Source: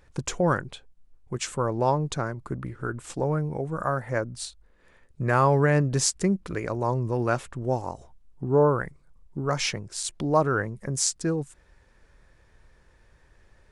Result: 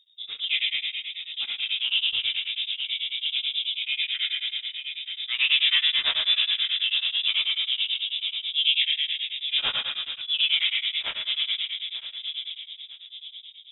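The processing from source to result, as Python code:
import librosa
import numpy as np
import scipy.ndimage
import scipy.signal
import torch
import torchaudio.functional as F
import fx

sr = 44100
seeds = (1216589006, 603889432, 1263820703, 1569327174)

p1 = fx.hum_notches(x, sr, base_hz=50, count=3)
p2 = fx.env_lowpass(p1, sr, base_hz=490.0, full_db=-17.5)
p3 = np.repeat(p2[::6], 6)[:len(p2)]
p4 = fx.comb_fb(p3, sr, f0_hz=96.0, decay_s=0.18, harmonics='all', damping=0.0, mix_pct=70)
p5 = p4 + fx.echo_filtered(p4, sr, ms=924, feedback_pct=42, hz=900.0, wet_db=-6.0, dry=0)
p6 = fx.rev_plate(p5, sr, seeds[0], rt60_s=2.8, hf_ratio=0.45, predelay_ms=0, drr_db=-4.0)
p7 = fx.transient(p6, sr, attack_db=-10, sustain_db=3)
p8 = fx.freq_invert(p7, sr, carrier_hz=3700)
p9 = p8 * np.abs(np.cos(np.pi * 9.2 * np.arange(len(p8)) / sr))
y = p9 * 10.0 ** (3.0 / 20.0)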